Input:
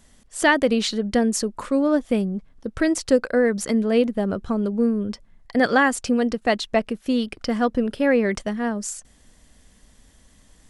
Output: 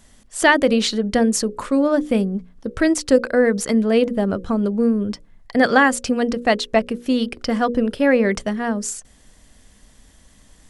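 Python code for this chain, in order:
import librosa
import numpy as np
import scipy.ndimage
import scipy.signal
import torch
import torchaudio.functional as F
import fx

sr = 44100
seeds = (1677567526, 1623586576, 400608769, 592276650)

y = fx.hum_notches(x, sr, base_hz=60, count=9)
y = y * 10.0 ** (3.5 / 20.0)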